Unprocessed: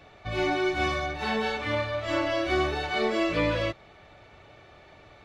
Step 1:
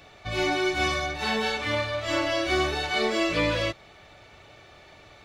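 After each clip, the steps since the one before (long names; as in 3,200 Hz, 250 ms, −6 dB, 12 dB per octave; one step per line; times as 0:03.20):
high-shelf EQ 3,600 Hz +11 dB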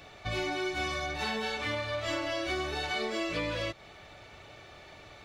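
downward compressor, threshold −30 dBFS, peak gain reduction 9.5 dB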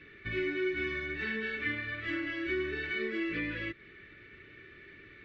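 drawn EQ curve 110 Hz 0 dB, 390 Hz +8 dB, 740 Hz −24 dB, 1,800 Hz +11 dB, 9,100 Hz −29 dB
level −5 dB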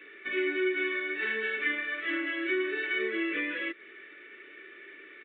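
high-pass filter 320 Hz 24 dB per octave
downsampling to 8,000 Hz
level +4.5 dB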